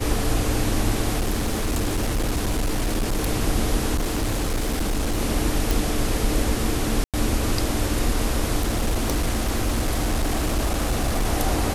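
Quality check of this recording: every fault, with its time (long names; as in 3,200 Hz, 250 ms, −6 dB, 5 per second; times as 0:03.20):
0:01.18–0:03.27: clipping −19 dBFS
0:03.95–0:05.21: clipping −19.5 dBFS
0:05.71: click
0:07.04–0:07.14: drop-out 97 ms
0:08.59–0:11.27: clipping −17.5 dBFS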